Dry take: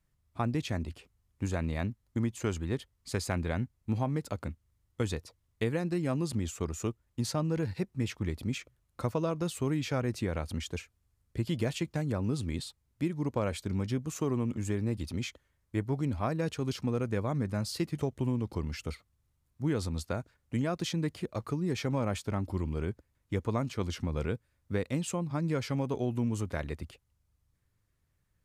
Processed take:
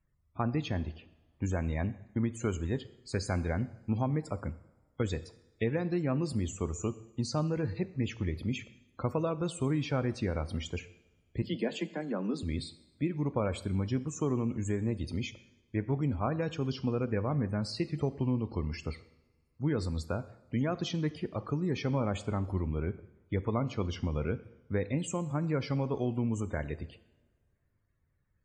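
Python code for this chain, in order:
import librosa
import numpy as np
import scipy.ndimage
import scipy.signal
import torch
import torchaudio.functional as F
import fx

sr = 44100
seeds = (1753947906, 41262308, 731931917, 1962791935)

y = fx.steep_highpass(x, sr, hz=170.0, slope=96, at=(11.42, 12.43))
y = fx.spec_topn(y, sr, count=64)
y = fx.rev_double_slope(y, sr, seeds[0], early_s=0.77, late_s=2.5, knee_db=-21, drr_db=13.0)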